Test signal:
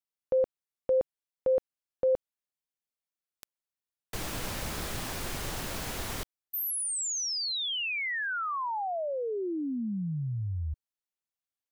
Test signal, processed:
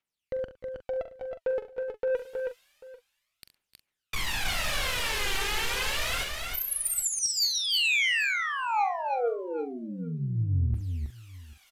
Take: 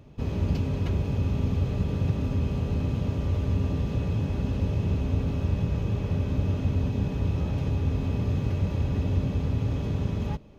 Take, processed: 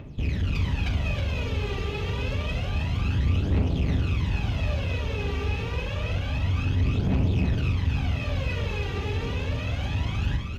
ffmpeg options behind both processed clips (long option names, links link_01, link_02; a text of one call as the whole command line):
ffmpeg -i in.wav -filter_complex "[0:a]equalizer=frequency=2500:width_type=o:width=1.9:gain=12,areverse,acompressor=mode=upward:threshold=-37dB:ratio=2.5:attack=1.2:release=745:knee=2.83:detection=peak,areverse,aphaser=in_gain=1:out_gain=1:delay=2.6:decay=0.79:speed=0.28:type=triangular,asoftclip=type=tanh:threshold=-18.5dB,asplit=2[link_01][link_02];[link_02]adelay=43,volume=-10.5dB[link_03];[link_01][link_03]amix=inputs=2:normalize=0,asplit=2[link_04][link_05];[link_05]aecho=0:1:69|303|319|791:0.2|0.15|0.596|0.106[link_06];[link_04][link_06]amix=inputs=2:normalize=0,aresample=32000,aresample=44100,volume=-3.5dB" out.wav